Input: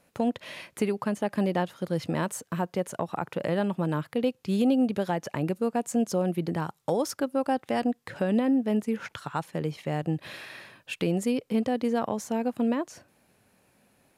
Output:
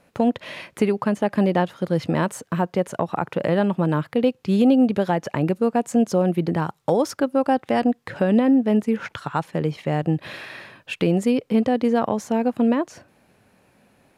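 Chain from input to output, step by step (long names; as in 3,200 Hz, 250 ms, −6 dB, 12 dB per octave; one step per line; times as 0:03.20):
high-shelf EQ 5,400 Hz −9.5 dB
level +7 dB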